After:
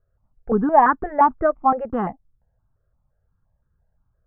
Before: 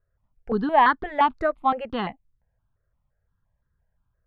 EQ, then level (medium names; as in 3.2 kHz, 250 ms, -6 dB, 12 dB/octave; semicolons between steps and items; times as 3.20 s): low-pass 1.4 kHz 24 dB/octave; band-stop 1 kHz, Q 12; +5.0 dB